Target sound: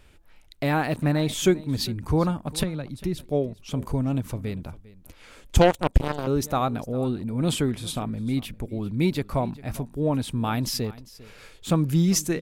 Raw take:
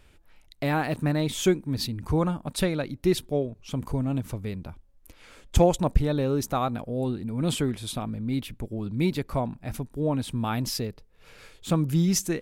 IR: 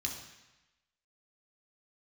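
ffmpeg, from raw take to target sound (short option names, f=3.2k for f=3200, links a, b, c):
-filter_complex "[0:a]asettb=1/sr,asplit=3[a][b][c];[a]atrim=end=2.634[d];[b]atrim=start=2.63:end=3.2,asetpts=PTS-STARTPTS,afade=t=in:d=0.004:c=qsin,afade=t=out:st=0.566:d=0.004:c=qsin,acrossover=split=190[e][f];[f]acompressor=threshold=-39dB:ratio=2.5[g];[e][g]amix=inputs=2:normalize=0[h];[c]atrim=start=3.196[i];[d][h]acrossfade=d=0.004:c1=hsin:c2=qsin[j];[j][i]acrossfade=d=0.004:c1=qsin:c2=hsin,aecho=1:1:400:0.106,asettb=1/sr,asplit=3[k][l][m];[k]atrim=end=5.614[n];[l]atrim=start=5.61:end=6.27,asetpts=PTS-STARTPTS,afade=t=in:d=0.004:c=qsin,afade=t=out:st=0.656:d=0.004:c=qsin,aeval=exprs='0.376*(cos(1*acos(clip(val(0)/0.376,-1,1)))-cos(1*PI/2))+0.0668*(cos(7*acos(clip(val(0)/0.376,-1,1)))-cos(7*PI/2))':c=same[o];[m]atrim=start=6.266[p];[n][o]acrossfade=d=0.004:c1=hsin:c2=qsin[q];[q][p]acrossfade=d=0.004:c1=qsin:c2=hsin,volume=2dB"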